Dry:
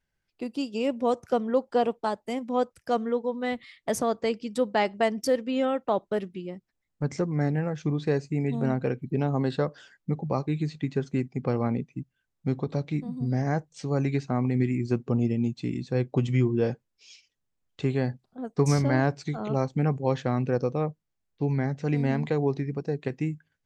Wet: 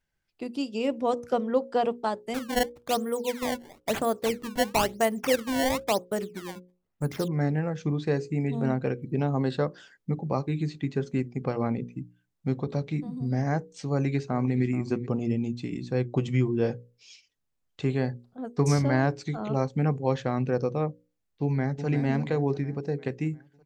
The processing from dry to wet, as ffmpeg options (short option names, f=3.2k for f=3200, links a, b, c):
-filter_complex "[0:a]asettb=1/sr,asplit=3[a][b][c];[a]atrim=end=2.344[d];[b]atrim=start=2.34:end=7.28,asetpts=PTS-STARTPTS,afade=t=in:d=0.004:c=qsin,afade=t=out:st=4.936:d=0.004:c=qsin,acrusher=samples=20:mix=1:aa=0.000001:lfo=1:lforange=32:lforate=1[e];[c]atrim=start=7.276[f];[d][e]acrossfade=d=0.004:c1=hsin:c2=qsin[g];[g][f]acrossfade=d=0.004:c1=qsin:c2=hsin,asplit=2[h][i];[i]afade=t=in:st=13.89:d=0.01,afade=t=out:st=14.63:d=0.01,aecho=0:1:430|860:0.149624|0.0149624[j];[h][j]amix=inputs=2:normalize=0,asplit=2[k][l];[l]afade=t=in:st=21.43:d=0.01,afade=t=out:st=21.87:d=0.01,aecho=0:1:350|700|1050|1400|1750|2100:0.334965|0.184231|0.101327|0.0557299|0.0306514|0.0168583[m];[k][m]amix=inputs=2:normalize=0,bandreject=f=60:t=h:w=6,bandreject=f=120:t=h:w=6,bandreject=f=180:t=h:w=6,bandreject=f=240:t=h:w=6,bandreject=f=300:t=h:w=6,bandreject=f=360:t=h:w=6,bandreject=f=420:t=h:w=6,bandreject=f=480:t=h:w=6,bandreject=f=540:t=h:w=6"